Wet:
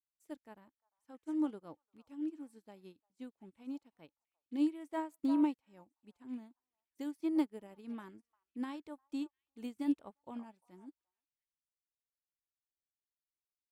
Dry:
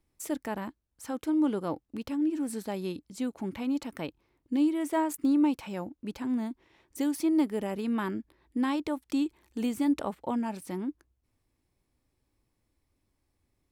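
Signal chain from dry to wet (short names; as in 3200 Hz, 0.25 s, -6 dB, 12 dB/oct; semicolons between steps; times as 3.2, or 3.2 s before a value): delay with a stepping band-pass 0.349 s, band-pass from 980 Hz, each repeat 1.4 oct, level -8 dB; upward expander 2.5:1, over -45 dBFS; gain -4 dB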